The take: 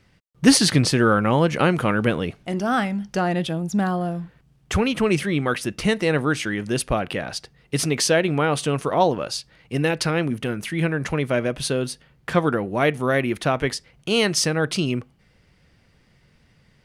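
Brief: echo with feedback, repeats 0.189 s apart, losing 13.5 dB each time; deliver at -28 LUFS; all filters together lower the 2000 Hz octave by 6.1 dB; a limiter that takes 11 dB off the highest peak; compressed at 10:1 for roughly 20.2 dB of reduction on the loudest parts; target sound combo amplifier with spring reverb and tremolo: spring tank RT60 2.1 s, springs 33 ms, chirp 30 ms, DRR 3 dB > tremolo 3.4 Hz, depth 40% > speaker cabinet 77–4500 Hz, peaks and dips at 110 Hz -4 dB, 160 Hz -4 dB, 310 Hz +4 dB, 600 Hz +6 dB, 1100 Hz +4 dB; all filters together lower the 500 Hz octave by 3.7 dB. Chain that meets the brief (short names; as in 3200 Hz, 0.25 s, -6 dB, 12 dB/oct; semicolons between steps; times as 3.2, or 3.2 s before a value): bell 500 Hz -8 dB; bell 2000 Hz -8.5 dB; compressor 10:1, threshold -32 dBFS; limiter -28 dBFS; feedback echo 0.189 s, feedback 21%, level -13.5 dB; spring tank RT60 2.1 s, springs 33 ms, chirp 30 ms, DRR 3 dB; tremolo 3.4 Hz, depth 40%; speaker cabinet 77–4500 Hz, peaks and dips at 110 Hz -4 dB, 160 Hz -4 dB, 310 Hz +4 dB, 600 Hz +6 dB, 1100 Hz +4 dB; gain +10.5 dB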